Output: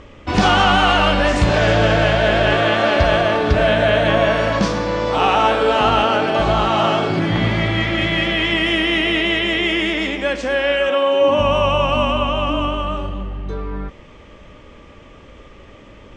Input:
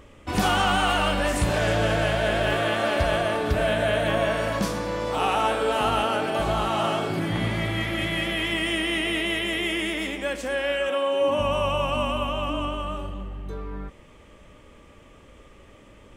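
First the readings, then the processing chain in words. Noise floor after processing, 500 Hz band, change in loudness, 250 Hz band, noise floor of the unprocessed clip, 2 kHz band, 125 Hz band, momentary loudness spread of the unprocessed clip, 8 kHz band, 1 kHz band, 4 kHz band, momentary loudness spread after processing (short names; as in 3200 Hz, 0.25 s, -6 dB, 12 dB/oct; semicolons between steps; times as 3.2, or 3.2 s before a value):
-42 dBFS, +8.0 dB, +8.0 dB, +8.0 dB, -50 dBFS, +8.0 dB, +8.0 dB, 7 LU, +0.5 dB, +8.0 dB, +8.0 dB, 7 LU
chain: LPF 6100 Hz 24 dB/oct; gain +8 dB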